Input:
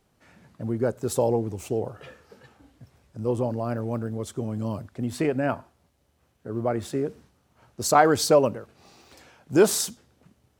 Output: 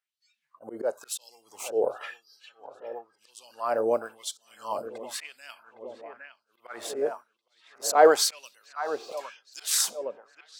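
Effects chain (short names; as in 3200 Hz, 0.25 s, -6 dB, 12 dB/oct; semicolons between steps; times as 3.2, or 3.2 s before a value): spectral noise reduction 25 dB; in parallel at -3 dB: compressor 10:1, threshold -30 dBFS, peak gain reduction 18.5 dB; on the sum: auto swell 0.144 s; dark delay 0.812 s, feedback 59%, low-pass 2400 Hz, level -12 dB; LFO high-pass sine 0.97 Hz 460–4400 Hz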